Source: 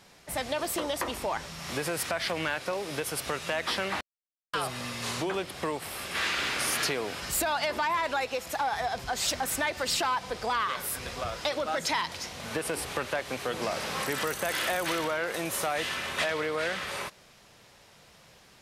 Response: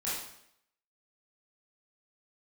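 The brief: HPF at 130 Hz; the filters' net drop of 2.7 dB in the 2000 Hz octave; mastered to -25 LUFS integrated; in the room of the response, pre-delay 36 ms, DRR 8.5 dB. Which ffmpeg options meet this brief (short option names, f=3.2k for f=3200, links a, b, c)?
-filter_complex "[0:a]highpass=130,equalizer=f=2k:t=o:g=-3.5,asplit=2[a][b];[1:a]atrim=start_sample=2205,adelay=36[c];[b][c]afir=irnorm=-1:irlink=0,volume=-13.5dB[d];[a][d]amix=inputs=2:normalize=0,volume=6dB"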